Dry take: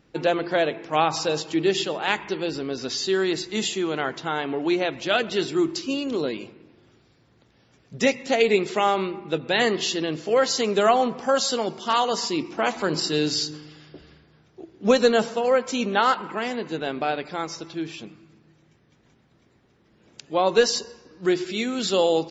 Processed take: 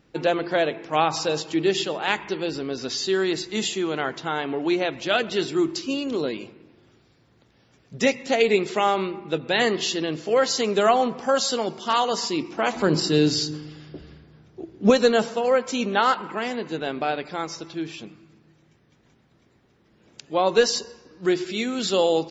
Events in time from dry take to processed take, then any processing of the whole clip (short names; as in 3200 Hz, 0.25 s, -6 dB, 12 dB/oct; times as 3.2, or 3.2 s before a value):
12.73–14.9 low shelf 430 Hz +8 dB